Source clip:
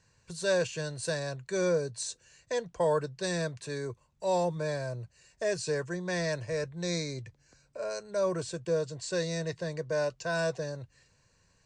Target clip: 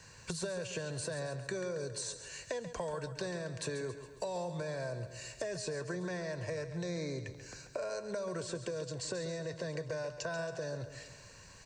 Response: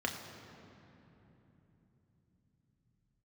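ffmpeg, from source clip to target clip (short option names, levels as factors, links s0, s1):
-filter_complex "[0:a]lowshelf=f=350:g=-4.5,acrossover=split=180|1700[s0][s1][s2];[s0]acompressor=threshold=0.00398:ratio=4[s3];[s1]acompressor=threshold=0.0158:ratio=4[s4];[s2]acompressor=threshold=0.00316:ratio=4[s5];[s3][s4][s5]amix=inputs=3:normalize=0,alimiter=level_in=2.82:limit=0.0631:level=0:latency=1:release=39,volume=0.355,acompressor=threshold=0.00355:ratio=12,asplit=2[s6][s7];[s7]aecho=0:1:137|274|411|548|685|822:0.282|0.149|0.0792|0.042|0.0222|0.0118[s8];[s6][s8]amix=inputs=2:normalize=0,volume=4.73"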